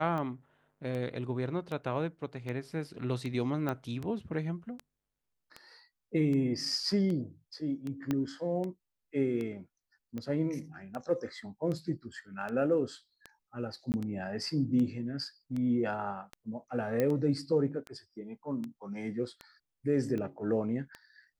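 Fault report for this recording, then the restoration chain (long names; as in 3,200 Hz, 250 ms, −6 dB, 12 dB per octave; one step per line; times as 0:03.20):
scratch tick 78 rpm −26 dBFS
0:03.69: click −20 dBFS
0:08.11: click −18 dBFS
0:13.92–0:13.94: drop-out 19 ms
0:17.00: click −17 dBFS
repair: click removal
repair the gap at 0:13.92, 19 ms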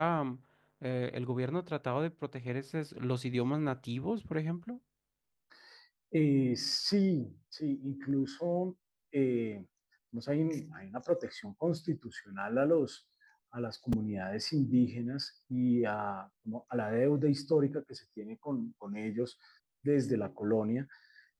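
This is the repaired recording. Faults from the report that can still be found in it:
0:08.11: click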